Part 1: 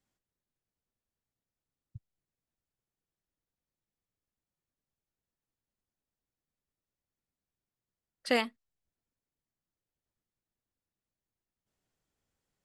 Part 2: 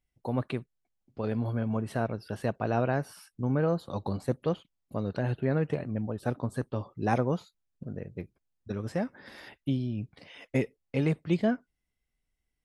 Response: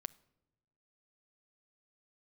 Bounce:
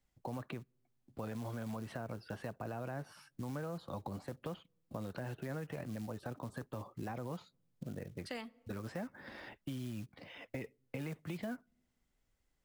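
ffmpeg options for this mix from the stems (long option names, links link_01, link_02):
-filter_complex "[0:a]volume=-3.5dB,asplit=2[link_01][link_02];[link_02]volume=-5dB[link_03];[1:a]aemphasis=mode=reproduction:type=75kf,bandreject=frequency=420:width=12,alimiter=level_in=0.5dB:limit=-24dB:level=0:latency=1:release=42,volume=-0.5dB,volume=0dB,asplit=3[link_04][link_05][link_06];[link_05]volume=-17.5dB[link_07];[link_06]apad=whole_len=557719[link_08];[link_01][link_08]sidechaincompress=threshold=-51dB:ratio=8:attack=8.6:release=226[link_09];[2:a]atrim=start_sample=2205[link_10];[link_03][link_07]amix=inputs=2:normalize=0[link_11];[link_11][link_10]afir=irnorm=-1:irlink=0[link_12];[link_09][link_04][link_12]amix=inputs=3:normalize=0,acrusher=bits=7:mode=log:mix=0:aa=0.000001,acrossover=split=180|800[link_13][link_14][link_15];[link_13]acompressor=threshold=-48dB:ratio=4[link_16];[link_14]acompressor=threshold=-45dB:ratio=4[link_17];[link_15]acompressor=threshold=-47dB:ratio=4[link_18];[link_16][link_17][link_18]amix=inputs=3:normalize=0"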